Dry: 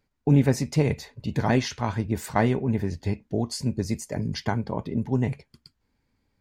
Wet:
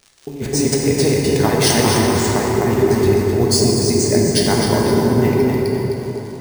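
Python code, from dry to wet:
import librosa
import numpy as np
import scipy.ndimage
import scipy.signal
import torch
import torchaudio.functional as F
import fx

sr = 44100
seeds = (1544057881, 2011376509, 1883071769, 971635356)

p1 = fx.peak_eq(x, sr, hz=390.0, db=10.5, octaves=0.45)
p2 = p1 + fx.echo_feedback(p1, sr, ms=258, feedback_pct=43, wet_db=-7, dry=0)
p3 = fx.over_compress(p2, sr, threshold_db=-22.0, ratio=-0.5)
p4 = fx.dmg_crackle(p3, sr, seeds[0], per_s=150.0, level_db=-41.0)
p5 = fx.peak_eq(p4, sr, hz=9100.0, db=13.0, octaves=2.3)
p6 = np.repeat(scipy.signal.resample_poly(p5, 1, 3), 3)[:len(p5)]
p7 = fx.rev_plate(p6, sr, seeds[1], rt60_s=4.2, hf_ratio=0.5, predelay_ms=0, drr_db=-2.5)
y = p7 * librosa.db_to_amplitude(4.0)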